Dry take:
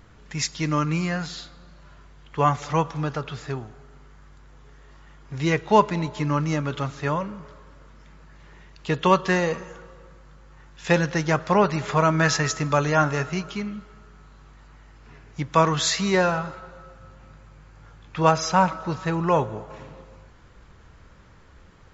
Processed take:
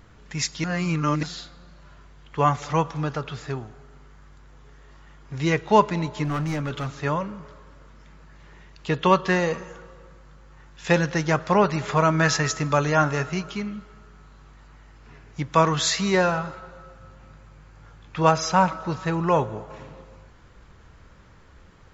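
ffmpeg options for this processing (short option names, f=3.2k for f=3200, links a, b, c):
-filter_complex "[0:a]asettb=1/sr,asplit=3[a][b][c];[a]atrim=end=6.244[d];[b]atrim=start=6.24:end=6.86,asetpts=PTS-STARTPTS,afade=t=in:d=0.004:c=qsin,afade=t=out:st=0.616:d=0.004:c=qsin,volume=22.5dB,asoftclip=hard,volume=-22.5dB[e];[c]atrim=start=6.856[f];[d][e]acrossfade=d=0.004:c1=hsin:c2=qsin[g];[g][f]acrossfade=d=0.004:c1=qsin:c2=hsin,asettb=1/sr,asplit=3[h][i][j];[h]atrim=end=8.894[k];[i]atrim=start=8.89:end=9.4,asetpts=PTS-STARTPTS,afade=t=in:d=0.004:c=qsin,afade=t=out:st=0.506:d=0.004:c=qsin,lowpass=6.4k[l];[j]atrim=start=9.396[m];[k][l]acrossfade=d=0.004:c1=hsin:c2=qsin[n];[n][m]acrossfade=d=0.004:c1=qsin:c2=hsin,asplit=3[o][p][q];[o]atrim=end=0.642[r];[p]atrim=start=0.638:end=1.232,asetpts=PTS-STARTPTS,areverse[s];[q]atrim=start=1.228[t];[r][s]acrossfade=d=0.004:c1=hsin:c2=hsin[u];[u][t]acrossfade=d=0.004:c1=hsin:c2=hsin"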